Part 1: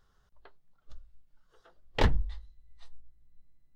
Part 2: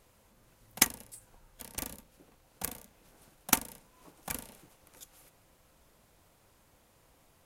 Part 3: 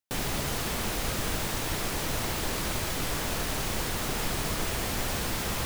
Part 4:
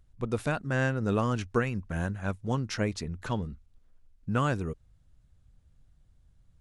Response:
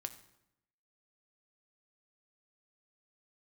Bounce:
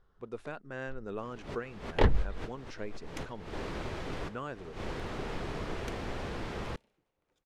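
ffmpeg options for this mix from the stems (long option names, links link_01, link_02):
-filter_complex "[0:a]volume=0dB[link_01];[1:a]adynamicequalizer=threshold=0.00158:dfrequency=1800:dqfactor=0.7:tfrequency=1800:tqfactor=0.7:attack=5:release=100:ratio=0.375:range=4:mode=boostabove:tftype=highshelf,adelay=2350,volume=-19.5dB[link_02];[2:a]adelay=1100,volume=-6dB[link_03];[3:a]aemphasis=mode=production:type=bsi,volume=-10.5dB,asplit=2[link_04][link_05];[link_05]apad=whole_len=298074[link_06];[link_03][link_06]sidechaincompress=threshold=-57dB:ratio=12:attack=11:release=105[link_07];[link_01][link_02][link_07][link_04]amix=inputs=4:normalize=0,equalizer=frequency=410:width=2:gain=5,adynamicsmooth=sensitivity=1:basefreq=3000"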